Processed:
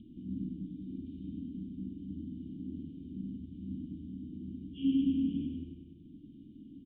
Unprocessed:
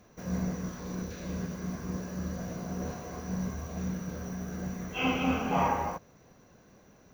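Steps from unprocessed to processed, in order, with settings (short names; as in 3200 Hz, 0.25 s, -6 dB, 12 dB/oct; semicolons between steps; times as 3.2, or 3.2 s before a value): elliptic band-stop 300–3500 Hz, stop band 40 dB; small resonant body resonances 610/1100/2800 Hz, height 14 dB, ringing for 45 ms; on a send: feedback echo 0.101 s, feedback 47%, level -4 dB; on the sum: upward compressor, threshold -36 dBFS; vocal tract filter i; spectral gain 2.55–3.3, 570–1900 Hz +10 dB; speed mistake 24 fps film run at 25 fps; gain +3 dB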